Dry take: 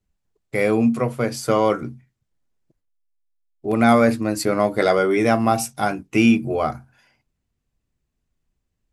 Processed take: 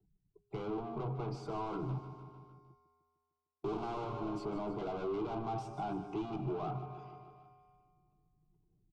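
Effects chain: spectral gate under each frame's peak -25 dB strong; HPF 63 Hz 6 dB/oct; transient shaper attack 0 dB, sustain +4 dB; 1.89–4.04 sample leveller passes 5; resonator 82 Hz, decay 1.8 s, harmonics odd, mix 60%; soft clip -36.5 dBFS, distortion -1 dB; tape spacing loss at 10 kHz 36 dB; fixed phaser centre 360 Hz, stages 8; feedback echo 0.151 s, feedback 53%, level -13 dB; three-band squash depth 40%; gain +6 dB

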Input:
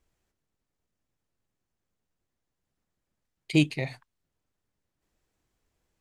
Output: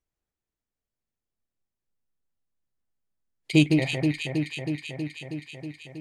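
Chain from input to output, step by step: echo with dull and thin repeats by turns 0.16 s, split 1900 Hz, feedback 86%, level -3 dB; spectral noise reduction 15 dB; gain +3 dB

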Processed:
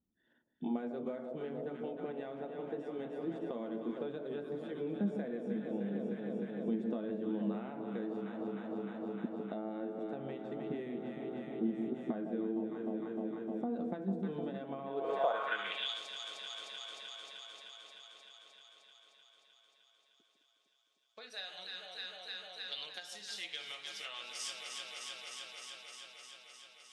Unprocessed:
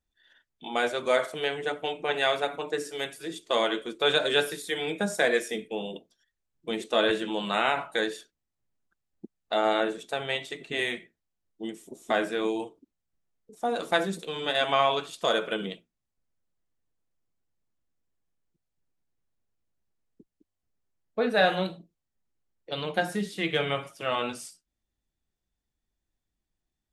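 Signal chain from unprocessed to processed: echo with dull and thin repeats by turns 0.153 s, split 930 Hz, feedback 87%, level -7.5 dB; compressor 8:1, threshold -36 dBFS, peak gain reduction 19 dB; band-pass sweep 220 Hz -> 5300 Hz, 14.81–16.01; gain +11.5 dB

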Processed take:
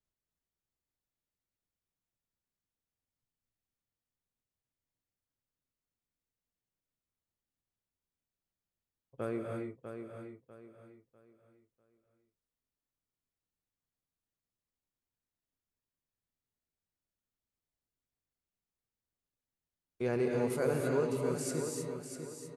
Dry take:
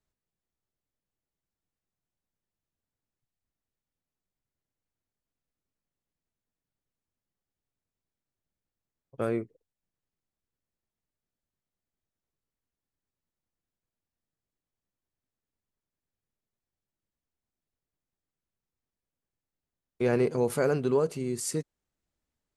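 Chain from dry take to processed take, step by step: on a send: feedback echo 0.647 s, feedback 32%, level -8 dB; on the sum: non-linear reverb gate 0.34 s rising, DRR 1 dB; gain -7.5 dB

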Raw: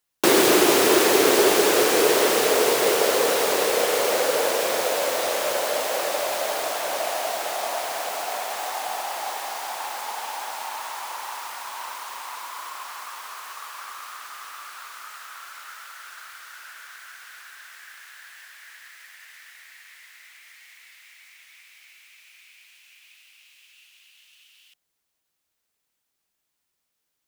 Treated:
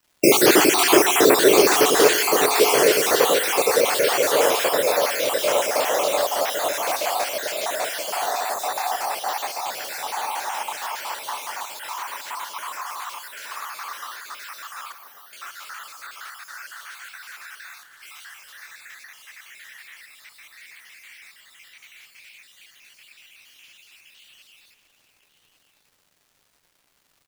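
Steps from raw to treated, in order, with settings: random spectral dropouts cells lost 43%; 14.92–15.33 inverse Chebyshev band-stop 1300–7900 Hz, stop band 40 dB; 17.83–18.25 negative-ratio compressor -51 dBFS, ratio -0.5; crackle 580/s -56 dBFS; echo 1.146 s -14 dB; reverb RT60 1.2 s, pre-delay 7 ms, DRR 12.5 dB; gain +5 dB

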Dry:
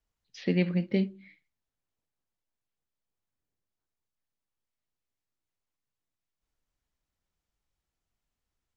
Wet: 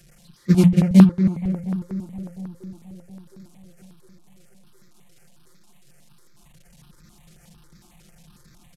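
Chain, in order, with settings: delta modulation 64 kbps, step -26 dBFS; gate -24 dBFS, range -27 dB; bell 160 Hz +14.5 dB 1.1 oct; notches 60/120/180 Hz; comb 5.7 ms, depth 82%; tape echo 0.237 s, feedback 87%, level -6 dB, low-pass 2000 Hz; step phaser 11 Hz 250–2900 Hz; gain +4 dB

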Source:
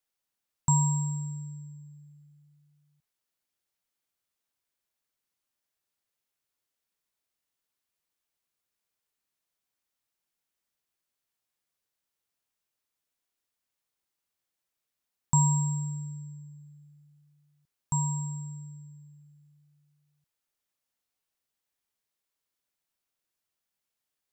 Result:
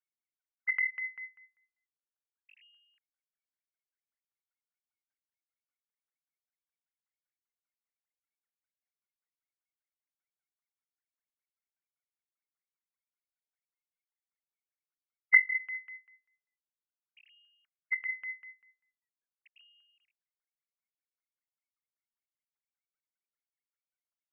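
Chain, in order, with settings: sine-wave speech; LFO low-pass saw down 5.1 Hz 290–1800 Hz; inverted band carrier 3000 Hz; gain -7 dB

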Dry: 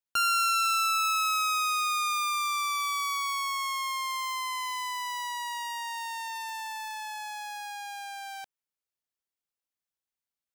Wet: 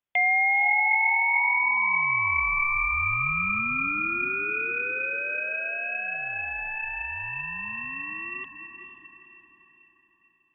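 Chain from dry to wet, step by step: diffused feedback echo 0.466 s, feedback 44%, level -8.5 dB; inverted band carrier 3500 Hz; gain +4.5 dB

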